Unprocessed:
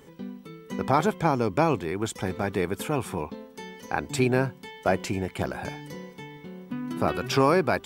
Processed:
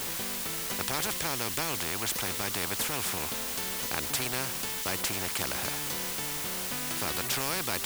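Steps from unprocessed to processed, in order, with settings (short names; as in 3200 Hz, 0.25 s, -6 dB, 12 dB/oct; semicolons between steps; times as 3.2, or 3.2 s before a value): low shelf 200 Hz +8 dB; in parallel at -10.5 dB: requantised 6-bit, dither triangular; on the sum: spectral compressor 4:1; gain -8.5 dB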